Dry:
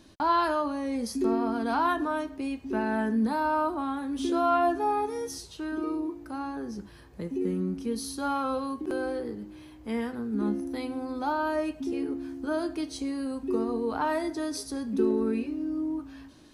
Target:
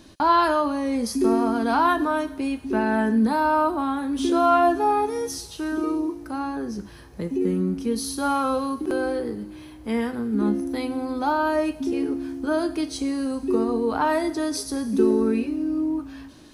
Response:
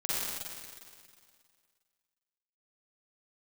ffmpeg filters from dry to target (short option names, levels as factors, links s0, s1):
-filter_complex "[0:a]asplit=2[s0][s1];[s1]aderivative[s2];[1:a]atrim=start_sample=2205[s3];[s2][s3]afir=irnorm=-1:irlink=0,volume=0.133[s4];[s0][s4]amix=inputs=2:normalize=0,volume=2"